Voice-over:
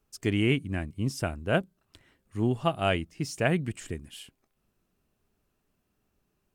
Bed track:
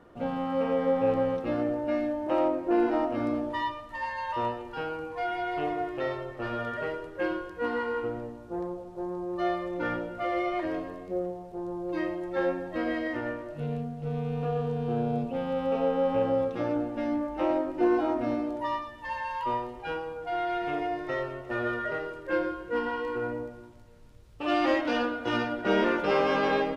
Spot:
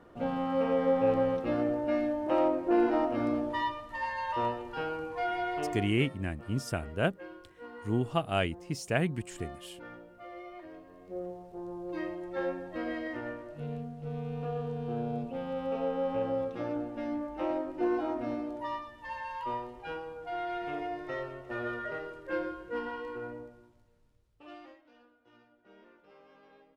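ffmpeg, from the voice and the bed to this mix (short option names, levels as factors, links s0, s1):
-filter_complex "[0:a]adelay=5500,volume=0.708[s0];[1:a]volume=3.16,afade=t=out:st=5.43:d=0.67:silence=0.16788,afade=t=in:st=10.86:d=0.46:silence=0.281838,afade=t=out:st=22.6:d=2.17:silence=0.0375837[s1];[s0][s1]amix=inputs=2:normalize=0"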